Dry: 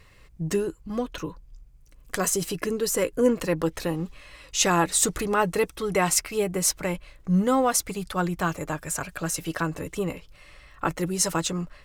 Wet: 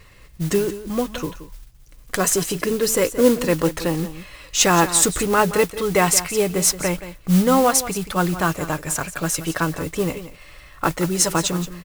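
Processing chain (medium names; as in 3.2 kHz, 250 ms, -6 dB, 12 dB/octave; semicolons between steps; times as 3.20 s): delay 175 ms -13.5 dB; modulation noise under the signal 16 dB; trim +5.5 dB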